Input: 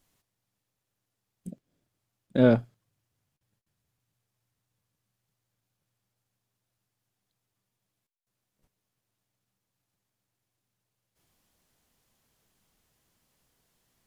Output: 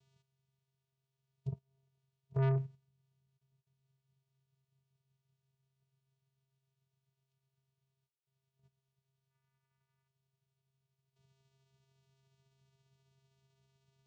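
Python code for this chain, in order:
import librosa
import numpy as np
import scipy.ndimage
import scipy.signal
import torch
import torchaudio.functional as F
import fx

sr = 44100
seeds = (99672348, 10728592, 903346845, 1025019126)

p1 = fx.pitch_glide(x, sr, semitones=5.0, runs='starting unshifted')
p2 = fx.high_shelf(p1, sr, hz=4300.0, db=10.0)
p3 = fx.level_steps(p2, sr, step_db=18)
p4 = p2 + (p3 * librosa.db_to_amplitude(0.5))
p5 = fx.spec_box(p4, sr, start_s=9.31, length_s=0.76, low_hz=1100.0, high_hz=2500.0, gain_db=12)
p6 = fx.vocoder(p5, sr, bands=4, carrier='square', carrier_hz=134.0)
p7 = 10.0 ** (-29.0 / 20.0) * np.tanh(p6 / 10.0 ** (-29.0 / 20.0))
y = p7 * librosa.db_to_amplitude(1.0)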